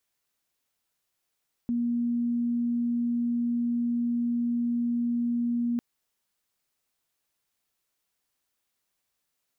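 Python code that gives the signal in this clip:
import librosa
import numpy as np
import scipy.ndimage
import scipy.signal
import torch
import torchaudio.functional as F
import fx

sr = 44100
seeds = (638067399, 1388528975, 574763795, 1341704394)

y = 10.0 ** (-24.0 / 20.0) * np.sin(2.0 * np.pi * (238.0 * (np.arange(round(4.1 * sr)) / sr)))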